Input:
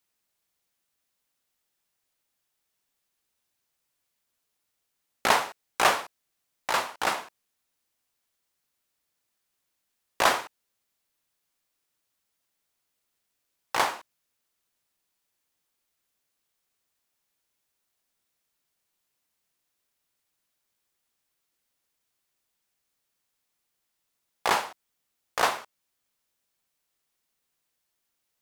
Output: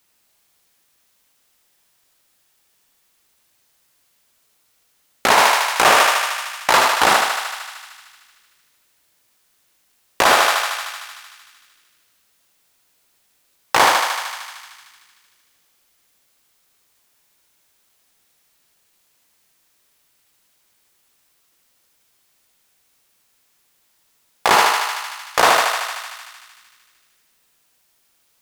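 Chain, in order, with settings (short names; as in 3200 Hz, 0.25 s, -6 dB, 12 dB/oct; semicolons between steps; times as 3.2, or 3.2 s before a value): thinning echo 76 ms, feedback 78%, high-pass 480 Hz, level -6.5 dB; maximiser +15.5 dB; gain -1 dB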